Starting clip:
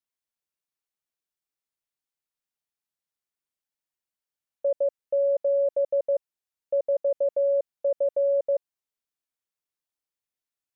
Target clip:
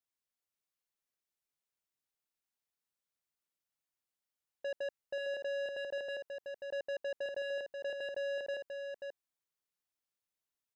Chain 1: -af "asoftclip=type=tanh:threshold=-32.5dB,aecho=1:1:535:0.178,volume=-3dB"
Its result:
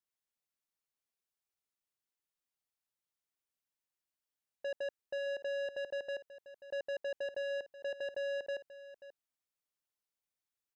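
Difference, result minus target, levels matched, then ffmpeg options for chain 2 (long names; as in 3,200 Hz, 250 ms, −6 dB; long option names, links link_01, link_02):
echo-to-direct −9.5 dB
-af "asoftclip=type=tanh:threshold=-32.5dB,aecho=1:1:535:0.531,volume=-3dB"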